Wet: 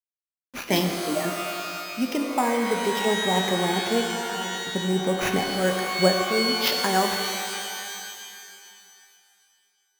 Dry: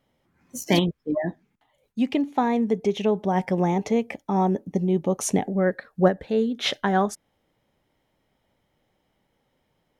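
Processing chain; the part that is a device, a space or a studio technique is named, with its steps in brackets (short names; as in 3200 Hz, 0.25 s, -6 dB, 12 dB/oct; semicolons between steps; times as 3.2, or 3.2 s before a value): HPF 78 Hz 12 dB/oct; low shelf 400 Hz -6 dB; 4.1–4.57 pre-emphasis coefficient 0.8; early 8-bit sampler (sample-rate reducer 8400 Hz, jitter 0%; bit-crush 8-bit); shimmer reverb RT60 2.4 s, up +12 st, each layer -2 dB, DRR 4.5 dB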